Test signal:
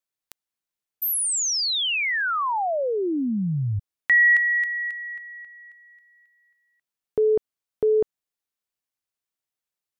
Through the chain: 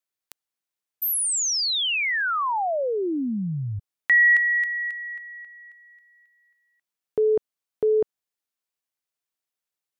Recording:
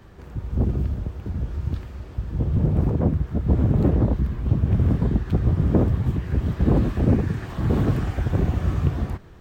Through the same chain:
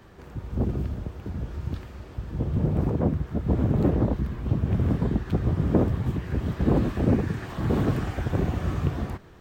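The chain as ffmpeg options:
-af "lowshelf=f=130:g=-7.5"

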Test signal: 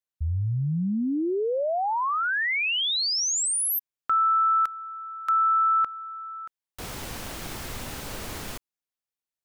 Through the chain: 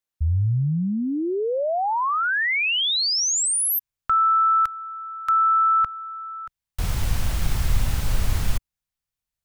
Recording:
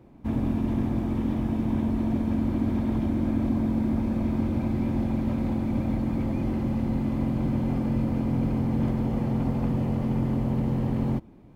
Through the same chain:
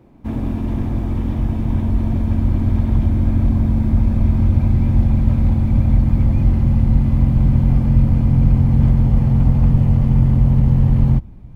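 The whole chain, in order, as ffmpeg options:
-af "asubboost=boost=8.5:cutoff=110,volume=1.5"

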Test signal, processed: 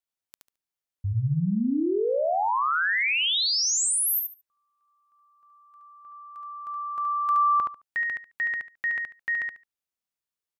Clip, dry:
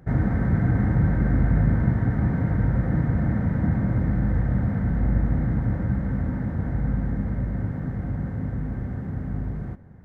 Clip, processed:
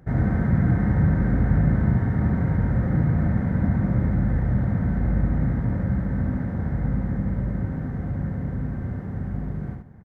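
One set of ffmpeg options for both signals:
-af "aecho=1:1:72|144|216:0.631|0.114|0.0204,volume=0.891"

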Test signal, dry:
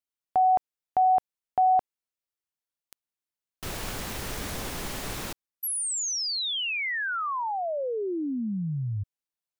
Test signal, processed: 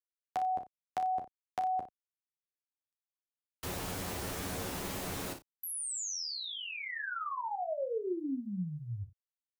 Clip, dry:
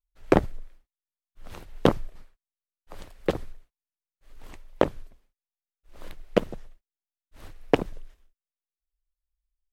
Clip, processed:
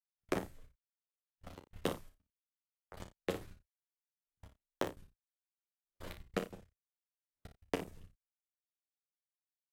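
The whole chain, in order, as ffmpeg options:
-filter_complex "[0:a]agate=range=0.00447:threshold=0.0126:ratio=16:release=23:detection=rms,highpass=f=72:p=1,acrossover=split=470|1100|7000[s0][s1][s2][s3];[s0]acompressor=threshold=0.0126:ratio=4[s4];[s1]acompressor=threshold=0.00631:ratio=4[s5];[s2]acompressor=threshold=0.00562:ratio=4[s6];[s3]acompressor=threshold=0.00708:ratio=4[s7];[s4][s5][s6][s7]amix=inputs=4:normalize=0,asplit=2[s8][s9];[s9]adelay=33,volume=0.299[s10];[s8][s10]amix=inputs=2:normalize=0,asplit=2[s11][s12];[s12]aecho=0:1:11|59:0.596|0.335[s13];[s11][s13]amix=inputs=2:normalize=0,volume=0.794"

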